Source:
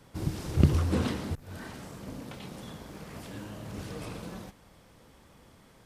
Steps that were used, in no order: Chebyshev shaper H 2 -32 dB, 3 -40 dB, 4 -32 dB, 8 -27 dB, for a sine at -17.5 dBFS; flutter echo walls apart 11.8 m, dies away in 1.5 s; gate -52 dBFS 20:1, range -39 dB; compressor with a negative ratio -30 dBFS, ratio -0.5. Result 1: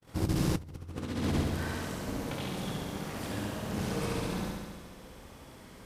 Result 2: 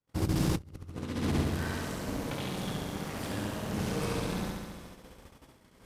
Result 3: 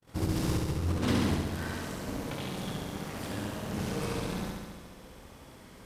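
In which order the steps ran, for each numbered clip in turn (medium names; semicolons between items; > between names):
Chebyshev shaper > flutter echo > compressor with a negative ratio > gate; flutter echo > gate > compressor with a negative ratio > Chebyshev shaper; compressor with a negative ratio > flutter echo > Chebyshev shaper > gate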